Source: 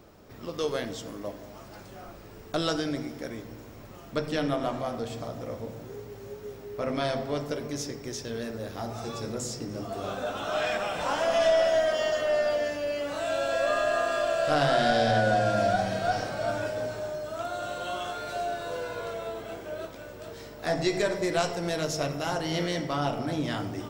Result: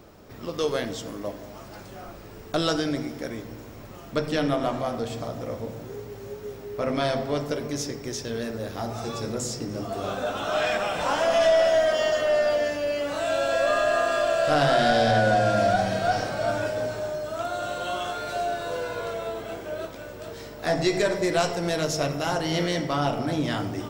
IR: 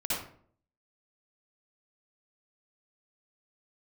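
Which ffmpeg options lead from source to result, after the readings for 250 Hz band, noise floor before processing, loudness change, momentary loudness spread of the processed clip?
+3.5 dB, −46 dBFS, +3.5 dB, 17 LU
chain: -filter_complex "[0:a]asplit=2[link_01][link_02];[link_02]asoftclip=type=hard:threshold=-21dB,volume=-5.5dB[link_03];[link_01][link_03]amix=inputs=2:normalize=0"

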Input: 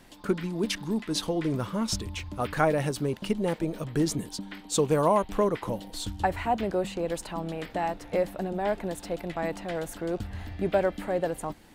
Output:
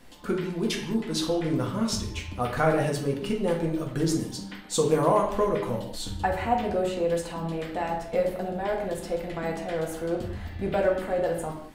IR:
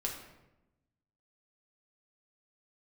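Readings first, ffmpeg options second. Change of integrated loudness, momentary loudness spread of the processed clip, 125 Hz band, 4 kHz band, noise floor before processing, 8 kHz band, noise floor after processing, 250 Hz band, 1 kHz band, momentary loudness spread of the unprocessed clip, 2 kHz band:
+1.5 dB, 8 LU, +1.5 dB, +1.0 dB, −48 dBFS, 0.0 dB, −40 dBFS, +1.0 dB, +1.0 dB, 9 LU, +1.5 dB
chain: -filter_complex "[1:a]atrim=start_sample=2205,afade=type=out:start_time=0.29:duration=0.01,atrim=end_sample=13230,asetrate=48510,aresample=44100[link_01];[0:a][link_01]afir=irnorm=-1:irlink=0"

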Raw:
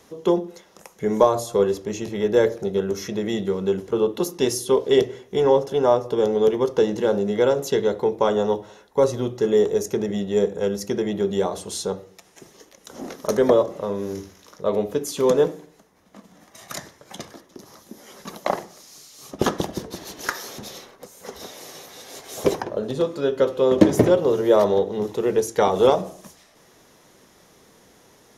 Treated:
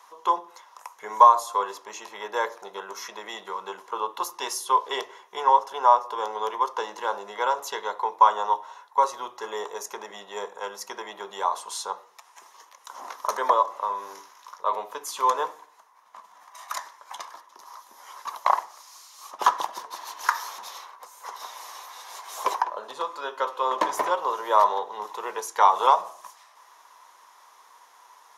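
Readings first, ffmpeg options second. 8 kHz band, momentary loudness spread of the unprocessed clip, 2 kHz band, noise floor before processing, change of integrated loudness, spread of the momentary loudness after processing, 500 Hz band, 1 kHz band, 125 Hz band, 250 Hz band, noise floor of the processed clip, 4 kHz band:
−3.5 dB, 19 LU, 0.0 dB, −55 dBFS, −4.0 dB, 20 LU, −13.0 dB, +8.0 dB, below −30 dB, −23.0 dB, −55 dBFS, −3.0 dB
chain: -af "highpass=frequency=1000:width_type=q:width=7,volume=-3.5dB"

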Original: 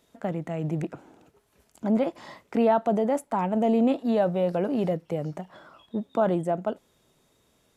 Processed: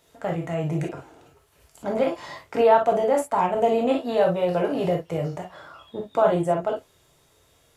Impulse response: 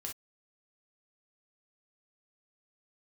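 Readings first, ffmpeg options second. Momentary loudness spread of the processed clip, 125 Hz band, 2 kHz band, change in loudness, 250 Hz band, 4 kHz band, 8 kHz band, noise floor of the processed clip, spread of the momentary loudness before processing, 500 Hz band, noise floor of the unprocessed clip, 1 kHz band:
16 LU, +2.0 dB, +6.0 dB, +3.0 dB, −3.0 dB, +6.5 dB, can't be measured, −61 dBFS, 13 LU, +4.5 dB, −67 dBFS, +5.5 dB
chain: -filter_complex "[0:a]equalizer=frequency=240:width=1.3:gain=-10.5[link_01];[1:a]atrim=start_sample=2205[link_02];[link_01][link_02]afir=irnorm=-1:irlink=0,volume=8.5dB"

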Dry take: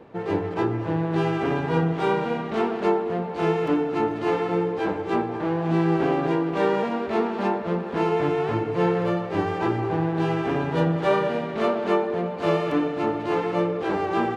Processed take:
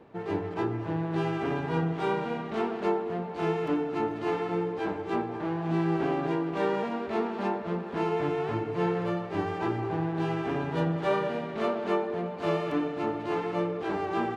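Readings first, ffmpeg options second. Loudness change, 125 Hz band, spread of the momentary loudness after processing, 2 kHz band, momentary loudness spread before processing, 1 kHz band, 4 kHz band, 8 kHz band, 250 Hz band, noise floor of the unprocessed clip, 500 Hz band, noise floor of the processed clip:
−5.5 dB, −5.5 dB, 4 LU, −5.5 dB, 4 LU, −5.5 dB, −5.5 dB, can't be measured, −5.5 dB, −31 dBFS, −6.0 dB, −37 dBFS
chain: -af "bandreject=frequency=510:width=12,volume=-5.5dB"

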